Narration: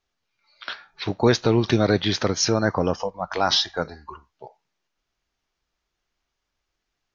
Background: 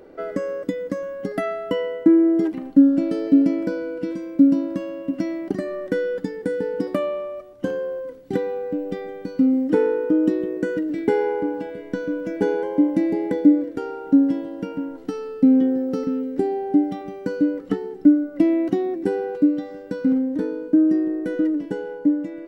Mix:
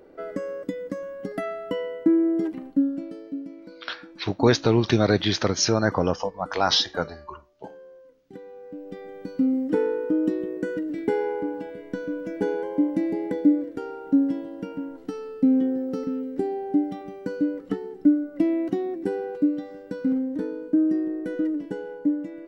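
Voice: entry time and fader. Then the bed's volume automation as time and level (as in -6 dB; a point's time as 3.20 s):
3.20 s, -0.5 dB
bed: 2.58 s -5 dB
3.45 s -19.5 dB
8.33 s -19.5 dB
9.24 s -4.5 dB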